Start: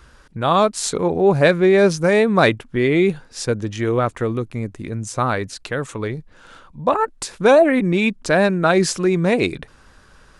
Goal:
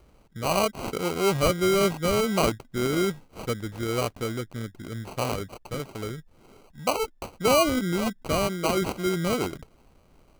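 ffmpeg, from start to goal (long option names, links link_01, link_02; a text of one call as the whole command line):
ffmpeg -i in.wav -filter_complex "[0:a]asettb=1/sr,asplit=3[link_01][link_02][link_03];[link_01]atrim=end=8.324[link_04];[link_02]atrim=start=8.32:end=8.82,asetpts=PTS-STARTPTS,afade=type=in:duration=0.004:curve=qsin,afade=type=out:start_time=0.496:duration=0.004:curve=qsin,lowshelf=frequency=170:gain=-7[link_05];[link_03]atrim=start=8.816[link_06];[link_04][link_05]acrossfade=duration=0.004:curve1=hsin:curve2=qsin[link_07];[link_07][link_06]acrossfade=duration=0.004:curve1=qsin:curve2=hsin,acrusher=samples=25:mix=1:aa=0.000001,volume=-8.5dB" out.wav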